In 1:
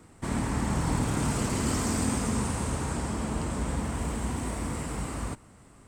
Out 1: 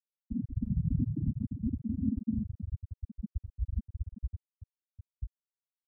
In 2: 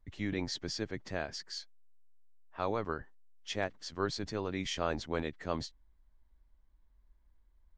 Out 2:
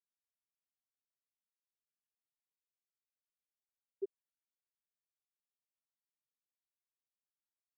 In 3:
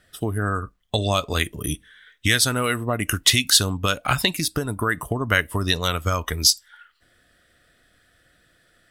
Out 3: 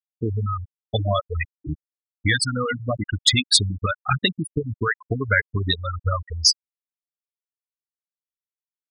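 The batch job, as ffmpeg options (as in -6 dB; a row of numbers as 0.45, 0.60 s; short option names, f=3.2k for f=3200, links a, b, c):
-af "afftfilt=real='re*gte(hypot(re,im),0.316)':imag='im*gte(hypot(re,im),0.316)':win_size=1024:overlap=0.75,volume=2dB"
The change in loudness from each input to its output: -5.5, -9.0, -1.0 LU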